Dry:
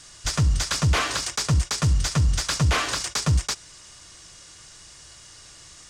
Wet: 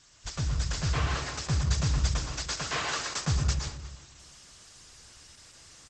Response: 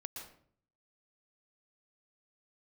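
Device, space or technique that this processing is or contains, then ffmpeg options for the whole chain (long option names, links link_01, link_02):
speakerphone in a meeting room: -filter_complex "[0:a]asplit=3[link_01][link_02][link_03];[link_01]afade=type=out:start_time=0.86:duration=0.02[link_04];[link_02]equalizer=frequency=8300:width_type=o:width=2.5:gain=-5,afade=type=in:start_time=0.86:duration=0.02,afade=type=out:start_time=1.4:duration=0.02[link_05];[link_03]afade=type=in:start_time=1.4:duration=0.02[link_06];[link_04][link_05][link_06]amix=inputs=3:normalize=0,asettb=1/sr,asplit=3[link_07][link_08][link_09];[link_07]atrim=end=2.104[link_10];[link_08]atrim=start=2.1:end=2.99,asetpts=PTS-STARTPTS,afade=type=in:duration=0.004:curve=qsin,afade=type=out:start_time=0.886:duration=0.004:curve=qsin,highpass=290[link_11];[link_09]atrim=start=2.986[link_12];[link_10][link_11]acrossfade=duration=0.004:curve1=hsin:curve2=qsin[link_13];[link_13][link_12]acrossfade=duration=0.004:curve1=qsin:curve2=hsin,asplit=2[link_14][link_15];[link_15]adelay=362,lowpass=frequency=2100:poles=1,volume=-16dB,asplit=2[link_16][link_17];[link_17]adelay=362,lowpass=frequency=2100:poles=1,volume=0.19[link_18];[link_14][link_16][link_18]amix=inputs=3:normalize=0[link_19];[1:a]atrim=start_sample=2205[link_20];[link_19][link_20]afir=irnorm=-1:irlink=0,asplit=2[link_21][link_22];[link_22]adelay=220,highpass=300,lowpass=3400,asoftclip=type=hard:threshold=-20.5dB,volume=-16dB[link_23];[link_21][link_23]amix=inputs=2:normalize=0,dynaudnorm=framelen=270:gausssize=7:maxgain=4dB,volume=-6dB" -ar 48000 -c:a libopus -b:a 12k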